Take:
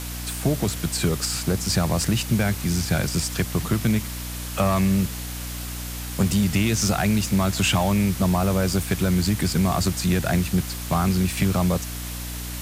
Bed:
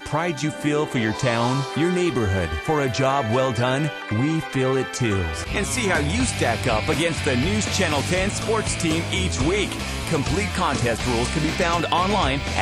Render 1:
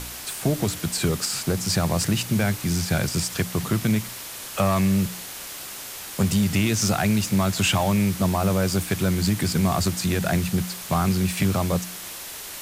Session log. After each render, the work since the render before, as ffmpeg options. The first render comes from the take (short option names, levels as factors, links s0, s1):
-af "bandreject=f=60:t=h:w=4,bandreject=f=120:t=h:w=4,bandreject=f=180:t=h:w=4,bandreject=f=240:t=h:w=4,bandreject=f=300:t=h:w=4"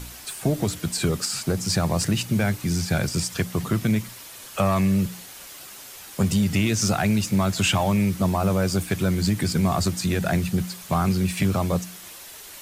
-af "afftdn=nr=7:nf=-37"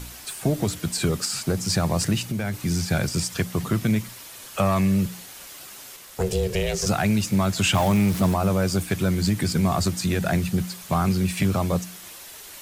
-filter_complex "[0:a]asettb=1/sr,asplit=3[s0][s1][s2];[s0]atrim=end=2.174[s3];[s1]atrim=start=2.17:end=2.58,asetpts=PTS-STARTPTS,afade=t=in:d=0.004:c=qsin,afade=t=out:st=0.406:d=0.004:c=qsin,acompressor=threshold=0.0708:ratio=6:attack=3.2:release=140:knee=1:detection=peak[s4];[s2]atrim=start=2.576[s5];[s3][s4]acrossfade=d=0.004:c1=hsin:c2=qsin[s6];[s6][s5]acrossfade=d=0.004:c1=qsin:c2=hsin,asplit=3[s7][s8][s9];[s7]afade=t=out:st=5.96:d=0.02[s10];[s8]aeval=exprs='val(0)*sin(2*PI*280*n/s)':c=same,afade=t=in:st=5.96:d=0.02,afade=t=out:st=6.85:d=0.02[s11];[s9]afade=t=in:st=6.85:d=0.02[s12];[s10][s11][s12]amix=inputs=3:normalize=0,asettb=1/sr,asplit=3[s13][s14][s15];[s13]atrim=end=7.744[s16];[s14]atrim=start=7.74:end=8.34,asetpts=PTS-STARTPTS,afade=t=in:d=0.004:c=qsin,afade=t=out:st=0.596:d=0.004:c=qsin,aeval=exprs='val(0)+0.5*0.0447*sgn(val(0))':c=same[s17];[s15]atrim=start=8.336[s18];[s16][s17]acrossfade=d=0.004:c1=hsin:c2=qsin[s19];[s19][s18]acrossfade=d=0.004:c1=qsin:c2=hsin"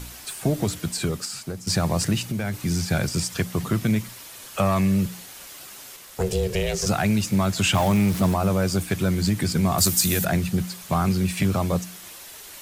-filter_complex "[0:a]asettb=1/sr,asplit=3[s0][s1][s2];[s0]atrim=end=9.784[s3];[s1]atrim=start=9.78:end=10.25,asetpts=PTS-STARTPTS,afade=t=in:d=0.004:c=qsin,afade=t=out:st=0.466:d=0.004:c=qsin,aemphasis=mode=production:type=75fm[s4];[s2]atrim=start=10.246[s5];[s3][s4]acrossfade=d=0.004:c1=hsin:c2=qsin[s6];[s6][s5]acrossfade=d=0.004:c1=qsin:c2=hsin,asplit=2[s7][s8];[s7]atrim=end=1.67,asetpts=PTS-STARTPTS,afade=t=out:st=0.75:d=0.92:silence=0.266073[s9];[s8]atrim=start=1.67,asetpts=PTS-STARTPTS,afade=t=in:d=0.004:c=hsin:silence=0.266073[s10];[s9][s10]concat=n=2:v=0:a=1"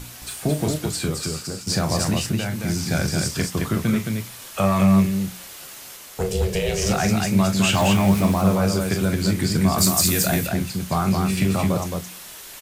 -filter_complex "[0:a]asplit=2[s0][s1];[s1]adelay=26,volume=0.299[s2];[s0][s2]amix=inputs=2:normalize=0,aecho=1:1:40.82|218.7:0.355|0.631"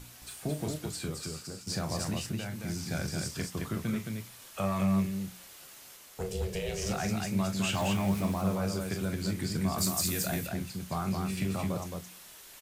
-af "volume=0.266"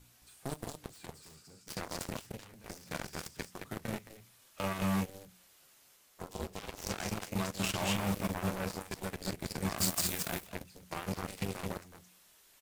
-filter_complex "[0:a]aeval=exprs='0.158*(cos(1*acos(clip(val(0)/0.158,-1,1)))-cos(1*PI/2))+0.0282*(cos(7*acos(clip(val(0)/0.158,-1,1)))-cos(7*PI/2))':c=same,acrossover=split=1400[s0][s1];[s0]asoftclip=type=hard:threshold=0.0447[s2];[s2][s1]amix=inputs=2:normalize=0"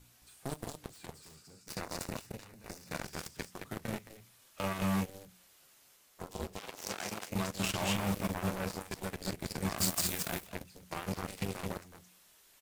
-filter_complex "[0:a]asettb=1/sr,asplit=3[s0][s1][s2];[s0]atrim=end=1.554[s3];[s1]atrim=start=1.55:end=3.03,asetpts=PTS-STARTPTS,afade=t=in:d=0.004:c=qsin,afade=t=out:st=1.476:d=0.004:c=qsin,bandreject=f=3200:w=10[s4];[s2]atrim=start=3.026[s5];[s3][s4]acrossfade=d=0.004:c1=hsin:c2=qsin[s6];[s6][s5]acrossfade=d=0.004:c1=qsin:c2=hsin,asettb=1/sr,asplit=3[s7][s8][s9];[s7]atrim=end=6.584[s10];[s8]atrim=start=6.58:end=7.3,asetpts=PTS-STARTPTS,afade=t=in:d=0.004:c=qsin,afade=t=out:st=0.716:d=0.004:c=qsin,highpass=f=340:p=1[s11];[s9]atrim=start=7.296[s12];[s10][s11]acrossfade=d=0.004:c1=hsin:c2=qsin[s13];[s13][s12]acrossfade=d=0.004:c1=qsin:c2=hsin"